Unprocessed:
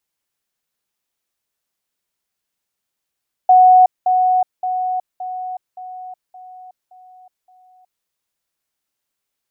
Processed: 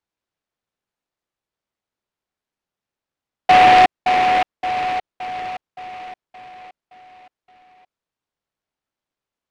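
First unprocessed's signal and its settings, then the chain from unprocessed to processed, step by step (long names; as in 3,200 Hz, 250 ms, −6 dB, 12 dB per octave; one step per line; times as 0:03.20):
level staircase 738 Hz −5.5 dBFS, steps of −6 dB, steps 8, 0.37 s 0.20 s
high-frequency loss of the air 220 metres
short delay modulated by noise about 1,400 Hz, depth 0.093 ms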